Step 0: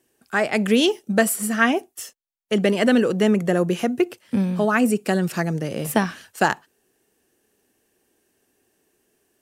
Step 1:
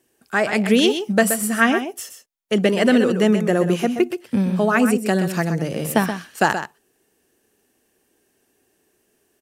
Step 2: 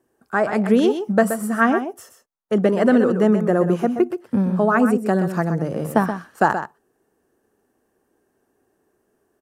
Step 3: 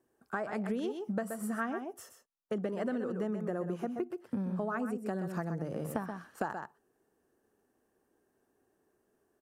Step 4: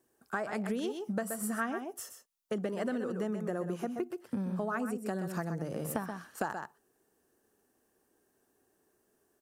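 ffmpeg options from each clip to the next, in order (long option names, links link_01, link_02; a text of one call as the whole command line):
ffmpeg -i in.wav -af "aecho=1:1:126:0.355,volume=1.5dB" out.wav
ffmpeg -i in.wav -af "highshelf=frequency=1800:width_type=q:width=1.5:gain=-10.5" out.wav
ffmpeg -i in.wav -af "acompressor=threshold=-25dB:ratio=5,volume=-7.5dB" out.wav
ffmpeg -i in.wav -af "highshelf=frequency=3000:gain=9" out.wav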